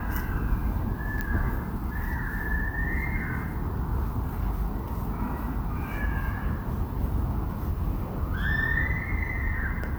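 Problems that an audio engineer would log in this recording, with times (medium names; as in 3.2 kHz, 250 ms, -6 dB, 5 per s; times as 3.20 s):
1.21 s: pop -16 dBFS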